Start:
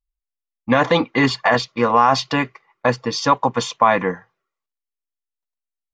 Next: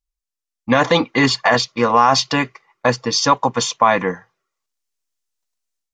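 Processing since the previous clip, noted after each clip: peaking EQ 6.3 kHz +8 dB 1.2 oct; level rider gain up to 9 dB; trim -1 dB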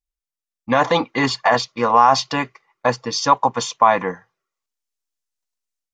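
dynamic bell 850 Hz, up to +7 dB, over -26 dBFS, Q 1.2; trim -5 dB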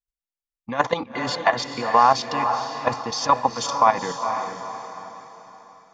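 level held to a coarse grid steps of 14 dB; echo that smears into a reverb 464 ms, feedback 42%, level -7 dB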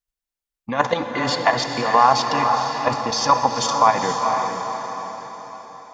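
in parallel at -2.5 dB: peak limiter -14.5 dBFS, peak gain reduction 11 dB; on the sum: plate-style reverb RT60 5 s, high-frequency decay 0.9×, DRR 7.5 dB; trim -1 dB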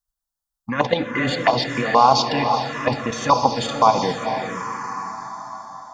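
touch-sensitive phaser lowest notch 400 Hz, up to 1.8 kHz, full sweep at -13.5 dBFS; trim +4 dB

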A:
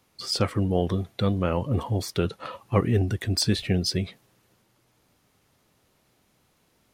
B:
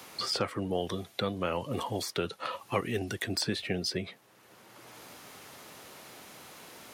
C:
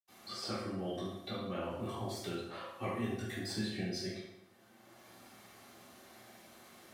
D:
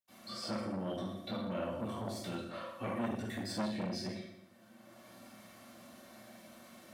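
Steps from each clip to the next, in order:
high-pass 500 Hz 6 dB/octave; three bands compressed up and down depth 70%; trim -1 dB
reverberation RT60 0.85 s, pre-delay 77 ms; trim +13.5 dB
comb of notches 410 Hz; small resonant body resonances 220/590/1200 Hz, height 7 dB; transformer saturation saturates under 940 Hz; trim +1 dB

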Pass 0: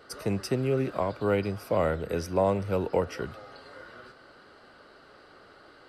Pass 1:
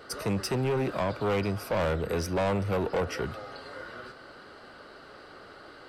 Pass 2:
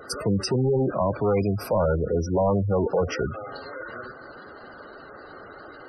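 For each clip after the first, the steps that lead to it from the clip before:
saturation -28.5 dBFS, distortion -7 dB; trim +5 dB
spectral gate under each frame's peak -15 dB strong; trim +6 dB

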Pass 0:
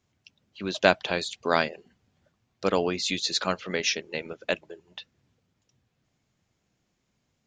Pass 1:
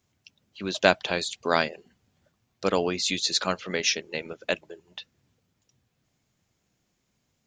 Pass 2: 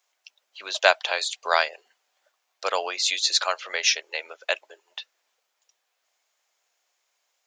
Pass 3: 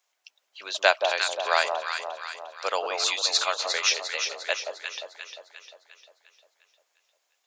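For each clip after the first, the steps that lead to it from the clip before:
treble shelf 7.6 kHz +8.5 dB
high-pass 610 Hz 24 dB/octave; trim +3.5 dB
echo whose repeats swap between lows and highs 176 ms, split 1 kHz, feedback 71%, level -3.5 dB; trim -2 dB

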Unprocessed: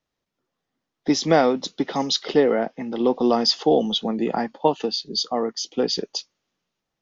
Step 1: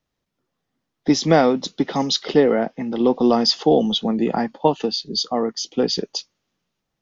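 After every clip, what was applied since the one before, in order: tone controls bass +5 dB, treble 0 dB; trim +1.5 dB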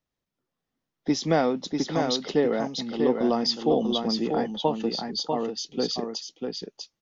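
delay 644 ms -5 dB; trim -7.5 dB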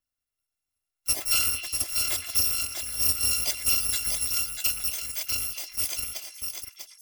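bit-reversed sample order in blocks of 256 samples; repeats whose band climbs or falls 113 ms, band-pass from 1.7 kHz, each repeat 0.7 oct, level -6 dB; trim -2 dB

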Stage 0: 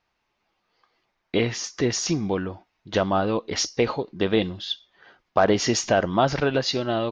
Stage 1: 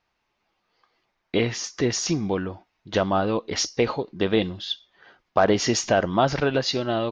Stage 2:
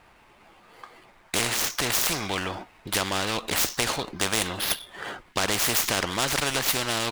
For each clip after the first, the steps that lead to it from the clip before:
no audible change
median filter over 9 samples; spectrum-flattening compressor 4:1

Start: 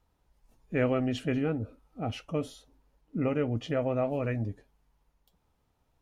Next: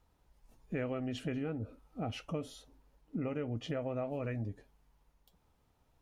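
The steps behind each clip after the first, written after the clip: compression 4:1, threshold -36 dBFS, peak gain reduction 12 dB; trim +1 dB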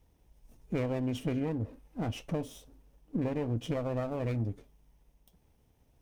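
comb filter that takes the minimum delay 0.33 ms; peaking EQ 2.1 kHz -5.5 dB 2.9 oct; trim +6 dB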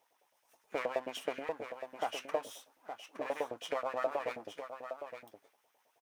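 LFO high-pass saw up 9.4 Hz 550–1800 Hz; delay 866 ms -9 dB; trim +1 dB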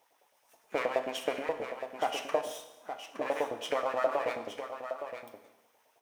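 Schroeder reverb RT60 0.98 s, combs from 27 ms, DRR 8.5 dB; trim +4.5 dB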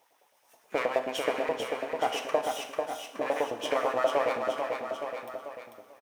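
feedback delay 443 ms, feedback 21%, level -4.5 dB; trim +2.5 dB

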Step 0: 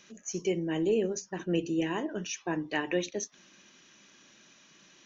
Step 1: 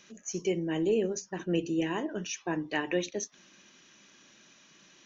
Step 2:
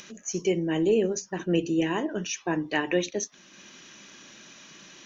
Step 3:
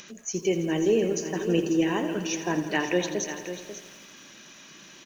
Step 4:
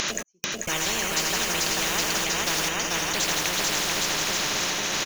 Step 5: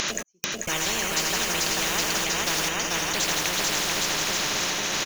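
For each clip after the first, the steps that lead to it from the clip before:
no audible change
upward compressor, threshold -46 dBFS; trim +4.5 dB
delay 542 ms -11 dB; bit-crushed delay 83 ms, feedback 80%, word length 8-bit, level -12 dB
trance gate "x..xxxxxxx." 67 bpm -60 dB; on a send: bouncing-ball echo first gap 440 ms, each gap 0.85×, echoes 5; on the sum: spectrum-flattening compressor 10:1; trim +1 dB
tape noise reduction on one side only encoder only

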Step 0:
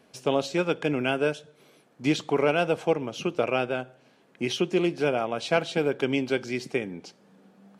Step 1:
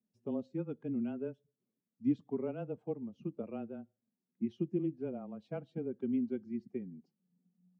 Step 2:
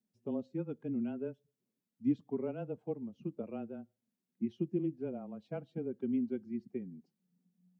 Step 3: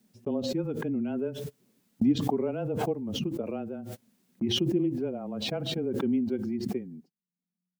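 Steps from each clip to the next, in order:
expander on every frequency bin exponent 1.5; frequency shift -17 Hz; band-pass filter 220 Hz, Q 2.7
band-stop 1.2 kHz, Q 18
gate -60 dBFS, range -28 dB; dynamic bell 190 Hz, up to -5 dB, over -48 dBFS, Q 1.7; swell ahead of each attack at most 24 dB/s; trim +7.5 dB

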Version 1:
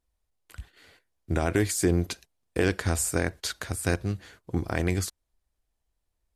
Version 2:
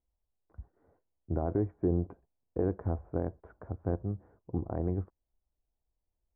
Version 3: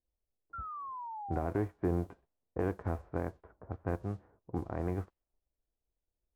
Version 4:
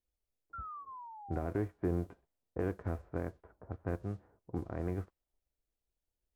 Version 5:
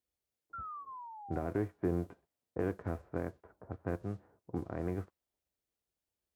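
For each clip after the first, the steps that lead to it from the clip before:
inverse Chebyshev low-pass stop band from 4.1 kHz, stop band 70 dB; trim -5 dB
formants flattened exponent 0.6; level-controlled noise filter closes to 550 Hz, open at -27 dBFS; painted sound fall, 0.53–1.47 s, 690–1400 Hz -39 dBFS; trim -3 dB
band-stop 1.1 kHz, Q 20; dynamic bell 850 Hz, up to -6 dB, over -53 dBFS, Q 2.8; trim -1.5 dB
high-pass 93 Hz 12 dB/octave; trim +1 dB

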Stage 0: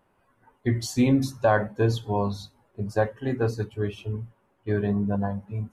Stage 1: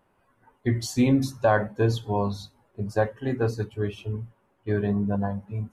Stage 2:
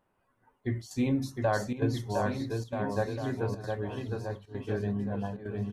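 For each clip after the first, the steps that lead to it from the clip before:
no audible change
bouncing-ball echo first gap 710 ms, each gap 0.8×, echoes 5; square tremolo 1.1 Hz, depth 65%, duty 90%; trim -7.5 dB

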